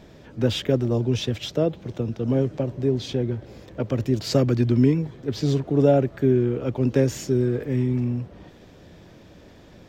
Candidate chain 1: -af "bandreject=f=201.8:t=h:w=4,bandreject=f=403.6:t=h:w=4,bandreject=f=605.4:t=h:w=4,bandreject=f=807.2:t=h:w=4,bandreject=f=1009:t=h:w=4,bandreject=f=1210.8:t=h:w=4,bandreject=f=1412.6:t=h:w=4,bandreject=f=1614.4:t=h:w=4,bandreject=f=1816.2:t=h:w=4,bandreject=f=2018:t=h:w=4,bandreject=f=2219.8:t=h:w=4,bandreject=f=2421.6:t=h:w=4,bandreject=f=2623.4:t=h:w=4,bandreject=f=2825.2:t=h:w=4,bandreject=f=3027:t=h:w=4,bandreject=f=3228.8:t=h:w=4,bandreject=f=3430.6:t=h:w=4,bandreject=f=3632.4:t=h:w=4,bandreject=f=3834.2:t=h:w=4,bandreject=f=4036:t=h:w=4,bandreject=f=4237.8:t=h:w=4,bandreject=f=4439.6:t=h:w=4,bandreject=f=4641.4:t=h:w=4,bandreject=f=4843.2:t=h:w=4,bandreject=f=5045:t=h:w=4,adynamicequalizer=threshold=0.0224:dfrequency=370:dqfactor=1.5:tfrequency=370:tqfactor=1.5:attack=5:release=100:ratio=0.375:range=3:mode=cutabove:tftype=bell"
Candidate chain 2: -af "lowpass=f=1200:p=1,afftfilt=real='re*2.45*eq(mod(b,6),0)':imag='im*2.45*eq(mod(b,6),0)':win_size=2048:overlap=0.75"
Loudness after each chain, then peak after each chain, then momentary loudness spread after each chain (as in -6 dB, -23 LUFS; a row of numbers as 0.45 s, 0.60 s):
-24.5 LUFS, -22.0 LUFS; -7.0 dBFS, -4.5 dBFS; 9 LU, 12 LU